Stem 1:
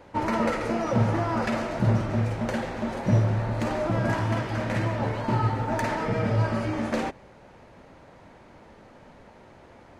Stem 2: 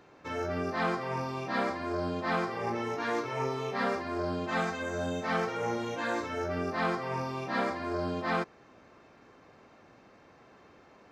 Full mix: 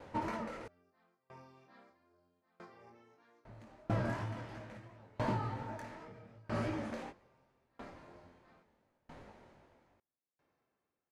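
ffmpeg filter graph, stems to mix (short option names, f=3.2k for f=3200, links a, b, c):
-filter_complex "[0:a]flanger=delay=19:depth=6.5:speed=2.8,acompressor=threshold=-29dB:ratio=12,volume=1.5dB,asplit=3[a][b][c];[a]atrim=end=0.68,asetpts=PTS-STARTPTS,afade=t=out:st=0.676:d=0.004:c=hsin[d];[b]atrim=start=0.68:end=3.45,asetpts=PTS-STARTPTS,volume=0[e];[c]atrim=start=3.45,asetpts=PTS-STARTPTS,afade=t=in:d=0.004:c=hsin[f];[d][e][f]concat=n=3:v=0:a=1[g];[1:a]adelay=200,volume=-20dB,asplit=2[h][i];[i]volume=-19.5dB,aecho=0:1:632:1[j];[g][h][j]amix=inputs=3:normalize=0,aeval=exprs='val(0)*pow(10,-30*if(lt(mod(0.77*n/s,1),2*abs(0.77)/1000),1-mod(0.77*n/s,1)/(2*abs(0.77)/1000),(mod(0.77*n/s,1)-2*abs(0.77)/1000)/(1-2*abs(0.77)/1000))/20)':c=same"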